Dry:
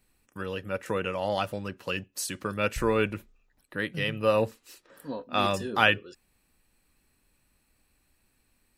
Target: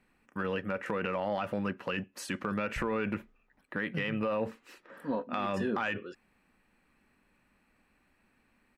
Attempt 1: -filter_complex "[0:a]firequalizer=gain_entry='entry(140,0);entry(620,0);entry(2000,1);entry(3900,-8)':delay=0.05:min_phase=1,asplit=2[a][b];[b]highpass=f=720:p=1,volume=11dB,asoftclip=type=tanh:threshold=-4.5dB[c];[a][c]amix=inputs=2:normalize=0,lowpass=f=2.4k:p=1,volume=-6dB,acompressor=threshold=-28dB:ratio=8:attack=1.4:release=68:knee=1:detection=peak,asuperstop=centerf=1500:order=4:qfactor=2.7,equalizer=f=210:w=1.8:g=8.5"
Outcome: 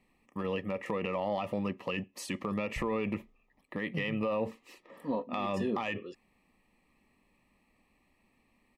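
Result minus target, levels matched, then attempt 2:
2000 Hz band -3.0 dB
-filter_complex "[0:a]firequalizer=gain_entry='entry(140,0);entry(620,0);entry(2000,1);entry(3900,-8)':delay=0.05:min_phase=1,asplit=2[a][b];[b]highpass=f=720:p=1,volume=11dB,asoftclip=type=tanh:threshold=-4.5dB[c];[a][c]amix=inputs=2:normalize=0,lowpass=f=2.4k:p=1,volume=-6dB,acompressor=threshold=-28dB:ratio=8:attack=1.4:release=68:knee=1:detection=peak,equalizer=f=210:w=1.8:g=8.5"

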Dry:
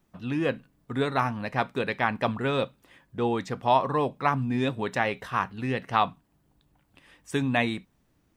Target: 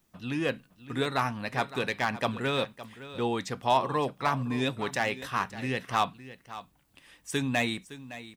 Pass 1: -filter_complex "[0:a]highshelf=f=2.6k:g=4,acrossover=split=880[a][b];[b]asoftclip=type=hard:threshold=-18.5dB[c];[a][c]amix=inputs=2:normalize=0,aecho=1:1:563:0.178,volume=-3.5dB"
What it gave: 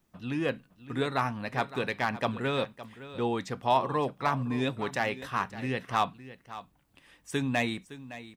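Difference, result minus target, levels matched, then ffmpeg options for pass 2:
4000 Hz band -2.5 dB
-filter_complex "[0:a]highshelf=f=2.6k:g=10,acrossover=split=880[a][b];[b]asoftclip=type=hard:threshold=-18.5dB[c];[a][c]amix=inputs=2:normalize=0,aecho=1:1:563:0.178,volume=-3.5dB"

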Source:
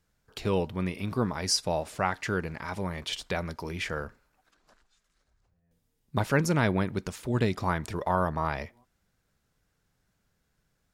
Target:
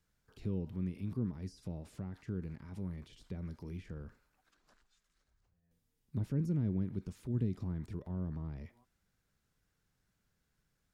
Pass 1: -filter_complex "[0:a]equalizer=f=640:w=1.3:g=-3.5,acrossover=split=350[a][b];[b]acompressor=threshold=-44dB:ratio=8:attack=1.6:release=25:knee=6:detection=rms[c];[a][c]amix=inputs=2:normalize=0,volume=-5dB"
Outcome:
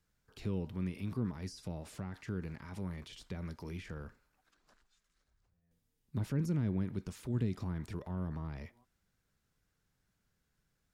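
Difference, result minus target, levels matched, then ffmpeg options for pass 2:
compressor: peak gain reduction -9 dB
-filter_complex "[0:a]equalizer=f=640:w=1.3:g=-3.5,acrossover=split=350[a][b];[b]acompressor=threshold=-54.5dB:ratio=8:attack=1.6:release=25:knee=6:detection=rms[c];[a][c]amix=inputs=2:normalize=0,volume=-5dB"

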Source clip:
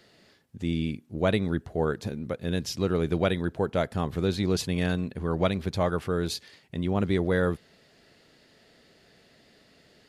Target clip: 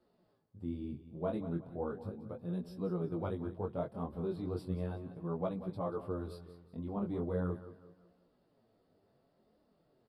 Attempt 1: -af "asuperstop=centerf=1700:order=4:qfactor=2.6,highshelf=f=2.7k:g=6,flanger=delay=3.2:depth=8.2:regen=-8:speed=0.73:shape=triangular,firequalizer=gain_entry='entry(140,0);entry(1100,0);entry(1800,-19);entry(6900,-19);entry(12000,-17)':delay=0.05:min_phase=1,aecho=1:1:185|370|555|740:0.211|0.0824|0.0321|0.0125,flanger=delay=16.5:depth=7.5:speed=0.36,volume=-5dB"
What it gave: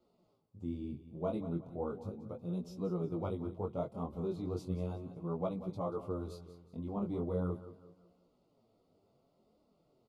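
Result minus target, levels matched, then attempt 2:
2000 Hz band -6.0 dB
-af "asuperstop=centerf=6500:order=4:qfactor=2.6,highshelf=f=2.7k:g=6,flanger=delay=3.2:depth=8.2:regen=-8:speed=0.73:shape=triangular,firequalizer=gain_entry='entry(140,0);entry(1100,0);entry(1800,-19);entry(6900,-19);entry(12000,-17)':delay=0.05:min_phase=1,aecho=1:1:185|370|555|740:0.211|0.0824|0.0321|0.0125,flanger=delay=16.5:depth=7.5:speed=0.36,volume=-5dB"

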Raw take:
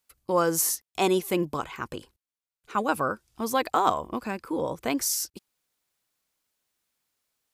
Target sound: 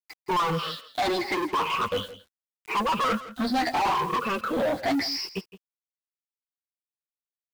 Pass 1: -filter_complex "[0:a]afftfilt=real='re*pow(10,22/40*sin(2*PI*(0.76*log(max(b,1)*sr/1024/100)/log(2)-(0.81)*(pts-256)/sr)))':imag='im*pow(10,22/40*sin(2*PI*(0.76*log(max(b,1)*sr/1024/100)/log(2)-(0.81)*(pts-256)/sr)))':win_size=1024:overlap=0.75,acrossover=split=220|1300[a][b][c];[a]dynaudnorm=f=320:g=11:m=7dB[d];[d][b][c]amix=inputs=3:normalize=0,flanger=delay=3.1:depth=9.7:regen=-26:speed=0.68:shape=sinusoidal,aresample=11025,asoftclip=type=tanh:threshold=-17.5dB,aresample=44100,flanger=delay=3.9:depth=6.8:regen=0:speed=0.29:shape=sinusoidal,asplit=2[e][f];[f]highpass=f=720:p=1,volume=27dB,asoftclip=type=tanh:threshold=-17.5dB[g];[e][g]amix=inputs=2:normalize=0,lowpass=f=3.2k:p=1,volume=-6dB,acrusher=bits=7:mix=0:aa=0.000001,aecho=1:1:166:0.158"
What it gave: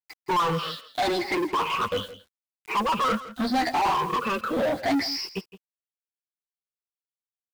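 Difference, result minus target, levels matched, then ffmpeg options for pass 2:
soft clip: distortion -6 dB
-filter_complex "[0:a]afftfilt=real='re*pow(10,22/40*sin(2*PI*(0.76*log(max(b,1)*sr/1024/100)/log(2)-(0.81)*(pts-256)/sr)))':imag='im*pow(10,22/40*sin(2*PI*(0.76*log(max(b,1)*sr/1024/100)/log(2)-(0.81)*(pts-256)/sr)))':win_size=1024:overlap=0.75,acrossover=split=220|1300[a][b][c];[a]dynaudnorm=f=320:g=11:m=7dB[d];[d][b][c]amix=inputs=3:normalize=0,flanger=delay=3.1:depth=9.7:regen=-26:speed=0.68:shape=sinusoidal,aresample=11025,asoftclip=type=tanh:threshold=-24.5dB,aresample=44100,flanger=delay=3.9:depth=6.8:regen=0:speed=0.29:shape=sinusoidal,asplit=2[e][f];[f]highpass=f=720:p=1,volume=27dB,asoftclip=type=tanh:threshold=-17.5dB[g];[e][g]amix=inputs=2:normalize=0,lowpass=f=3.2k:p=1,volume=-6dB,acrusher=bits=7:mix=0:aa=0.000001,aecho=1:1:166:0.158"

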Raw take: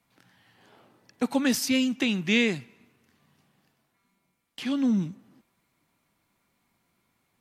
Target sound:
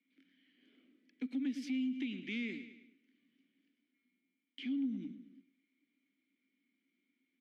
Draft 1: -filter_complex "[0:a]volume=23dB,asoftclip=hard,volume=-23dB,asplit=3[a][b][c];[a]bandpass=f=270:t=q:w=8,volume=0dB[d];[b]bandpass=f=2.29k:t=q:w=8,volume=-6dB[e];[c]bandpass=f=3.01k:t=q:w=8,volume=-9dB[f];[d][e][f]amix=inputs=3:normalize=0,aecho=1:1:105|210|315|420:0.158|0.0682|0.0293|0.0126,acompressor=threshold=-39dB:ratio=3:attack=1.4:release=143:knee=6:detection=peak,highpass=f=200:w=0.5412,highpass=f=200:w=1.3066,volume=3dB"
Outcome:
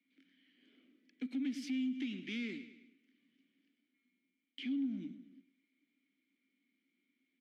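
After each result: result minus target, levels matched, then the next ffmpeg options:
overloaded stage: distortion +11 dB; 8000 Hz band +4.0 dB
-filter_complex "[0:a]volume=16dB,asoftclip=hard,volume=-16dB,asplit=3[a][b][c];[a]bandpass=f=270:t=q:w=8,volume=0dB[d];[b]bandpass=f=2.29k:t=q:w=8,volume=-6dB[e];[c]bandpass=f=3.01k:t=q:w=8,volume=-9dB[f];[d][e][f]amix=inputs=3:normalize=0,aecho=1:1:105|210|315|420:0.158|0.0682|0.0293|0.0126,acompressor=threshold=-39dB:ratio=3:attack=1.4:release=143:knee=6:detection=peak,highpass=f=200:w=0.5412,highpass=f=200:w=1.3066,volume=3dB"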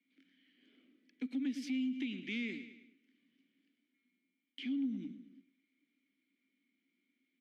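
8000 Hz band +2.5 dB
-filter_complex "[0:a]volume=16dB,asoftclip=hard,volume=-16dB,asplit=3[a][b][c];[a]bandpass=f=270:t=q:w=8,volume=0dB[d];[b]bandpass=f=2.29k:t=q:w=8,volume=-6dB[e];[c]bandpass=f=3.01k:t=q:w=8,volume=-9dB[f];[d][e][f]amix=inputs=3:normalize=0,aecho=1:1:105|210|315|420:0.158|0.0682|0.0293|0.0126,acompressor=threshold=-39dB:ratio=3:attack=1.4:release=143:knee=6:detection=peak,highpass=f=200:w=0.5412,highpass=f=200:w=1.3066,highshelf=f=3.7k:g=-3.5,volume=3dB"

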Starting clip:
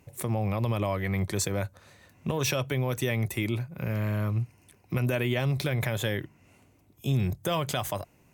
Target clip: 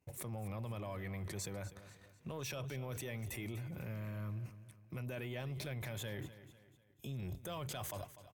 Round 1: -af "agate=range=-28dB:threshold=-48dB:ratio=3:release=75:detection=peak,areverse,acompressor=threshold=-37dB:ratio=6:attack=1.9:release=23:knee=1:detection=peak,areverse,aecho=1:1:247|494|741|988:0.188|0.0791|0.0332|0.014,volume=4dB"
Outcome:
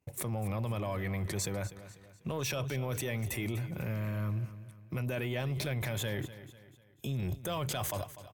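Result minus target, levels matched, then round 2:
compressor: peak gain reduction -8.5 dB
-af "agate=range=-28dB:threshold=-48dB:ratio=3:release=75:detection=peak,areverse,acompressor=threshold=-47dB:ratio=6:attack=1.9:release=23:knee=1:detection=peak,areverse,aecho=1:1:247|494|741|988:0.188|0.0791|0.0332|0.014,volume=4dB"

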